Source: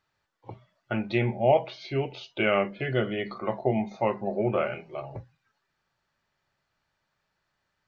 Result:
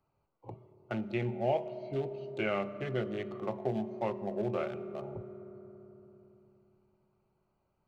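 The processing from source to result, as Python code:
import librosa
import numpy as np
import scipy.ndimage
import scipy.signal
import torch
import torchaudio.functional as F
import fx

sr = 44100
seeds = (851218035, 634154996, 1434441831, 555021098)

y = fx.wiener(x, sr, points=25)
y = fx.rev_fdn(y, sr, rt60_s=2.6, lf_ratio=1.3, hf_ratio=0.45, size_ms=15.0, drr_db=13.0)
y = fx.band_squash(y, sr, depth_pct=40)
y = F.gain(torch.from_numpy(y), -7.5).numpy()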